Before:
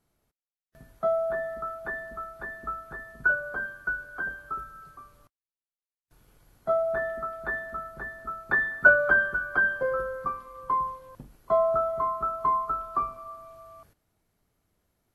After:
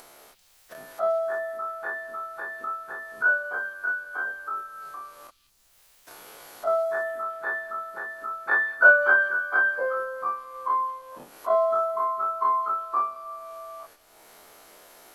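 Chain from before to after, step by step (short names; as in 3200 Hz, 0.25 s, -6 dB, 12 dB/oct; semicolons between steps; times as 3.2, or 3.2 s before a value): spectral dilation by 60 ms; Chebyshev high-pass 580 Hz, order 2; upward compressor, threshold -31 dBFS; delay with a stepping band-pass 0.196 s, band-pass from 3700 Hz, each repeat 0.7 oct, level -6 dB; added noise brown -73 dBFS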